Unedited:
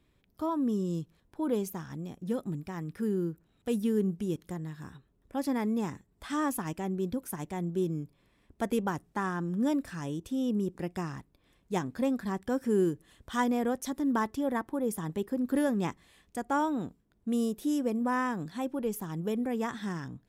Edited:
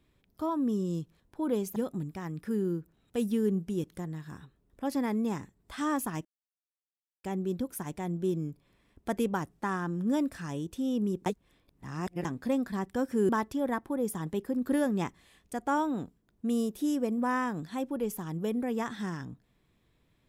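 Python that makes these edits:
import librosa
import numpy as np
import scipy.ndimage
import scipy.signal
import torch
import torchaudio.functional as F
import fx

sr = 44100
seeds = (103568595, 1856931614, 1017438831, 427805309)

y = fx.edit(x, sr, fx.cut(start_s=1.76, length_s=0.52),
    fx.insert_silence(at_s=6.77, length_s=0.99),
    fx.reverse_span(start_s=10.79, length_s=0.99),
    fx.cut(start_s=12.82, length_s=1.3), tone=tone)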